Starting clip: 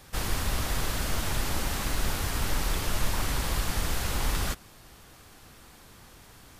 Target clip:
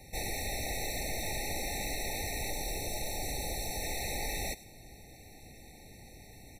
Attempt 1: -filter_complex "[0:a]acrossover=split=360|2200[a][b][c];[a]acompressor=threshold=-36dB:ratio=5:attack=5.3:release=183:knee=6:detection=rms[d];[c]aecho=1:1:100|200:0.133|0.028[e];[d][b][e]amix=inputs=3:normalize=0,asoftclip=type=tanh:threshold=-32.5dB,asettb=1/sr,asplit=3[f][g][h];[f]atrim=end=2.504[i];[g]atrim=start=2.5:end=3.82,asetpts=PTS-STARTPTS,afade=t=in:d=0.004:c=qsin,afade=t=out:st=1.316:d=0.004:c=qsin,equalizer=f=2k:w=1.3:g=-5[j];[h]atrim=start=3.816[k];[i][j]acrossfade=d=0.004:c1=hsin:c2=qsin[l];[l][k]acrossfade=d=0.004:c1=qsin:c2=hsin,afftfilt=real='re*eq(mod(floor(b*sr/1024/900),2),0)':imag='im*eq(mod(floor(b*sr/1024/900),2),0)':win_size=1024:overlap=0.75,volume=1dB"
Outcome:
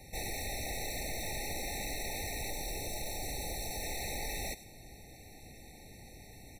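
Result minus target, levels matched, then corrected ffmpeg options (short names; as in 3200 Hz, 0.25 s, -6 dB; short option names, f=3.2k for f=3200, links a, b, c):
soft clip: distortion +8 dB
-filter_complex "[0:a]acrossover=split=360|2200[a][b][c];[a]acompressor=threshold=-36dB:ratio=5:attack=5.3:release=183:knee=6:detection=rms[d];[c]aecho=1:1:100|200:0.133|0.028[e];[d][b][e]amix=inputs=3:normalize=0,asoftclip=type=tanh:threshold=-26dB,asettb=1/sr,asplit=3[f][g][h];[f]atrim=end=2.504[i];[g]atrim=start=2.5:end=3.82,asetpts=PTS-STARTPTS,afade=t=in:d=0.004:c=qsin,afade=t=out:st=1.316:d=0.004:c=qsin,equalizer=f=2k:w=1.3:g=-5[j];[h]atrim=start=3.816[k];[i][j]acrossfade=d=0.004:c1=hsin:c2=qsin[l];[l][k]acrossfade=d=0.004:c1=qsin:c2=hsin,afftfilt=real='re*eq(mod(floor(b*sr/1024/900),2),0)':imag='im*eq(mod(floor(b*sr/1024/900),2),0)':win_size=1024:overlap=0.75,volume=1dB"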